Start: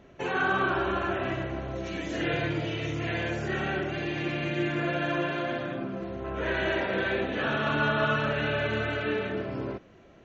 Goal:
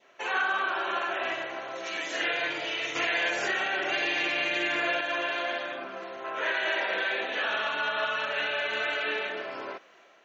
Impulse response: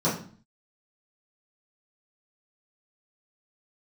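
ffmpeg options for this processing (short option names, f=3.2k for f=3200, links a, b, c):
-filter_complex "[0:a]asettb=1/sr,asplit=3[a][b][c];[a]atrim=end=2.954[d];[b]atrim=start=2.95:end=5.01,asetpts=PTS-STARTPTS,afade=t=in:d=0.004:c=qsin,afade=t=out:st=2.056:d=0.004:c=qsin,acontrast=78[e];[c]atrim=start=5.006[f];[d][e]acrossfade=d=0.004:c1=hsin:c2=qsin[g];[g][f]acrossfade=d=0.004:c1=qsin:c2=hsin,highpass=840,dynaudnorm=f=250:g=3:m=3.5dB,alimiter=limit=-20.5dB:level=0:latency=1:release=176,adynamicequalizer=threshold=0.00891:dfrequency=1300:dqfactor=1.8:tfrequency=1300:tqfactor=1.8:attack=5:release=100:ratio=0.375:range=2.5:mode=cutabove:tftype=bell,volume=3dB"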